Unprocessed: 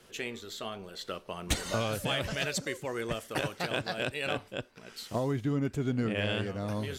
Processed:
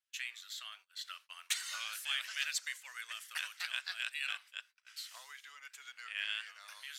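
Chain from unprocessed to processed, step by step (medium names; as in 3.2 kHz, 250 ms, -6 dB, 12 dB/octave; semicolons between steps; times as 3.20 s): high-pass 1.5 kHz 24 dB/octave; gate -54 dBFS, range -29 dB; trim -2 dB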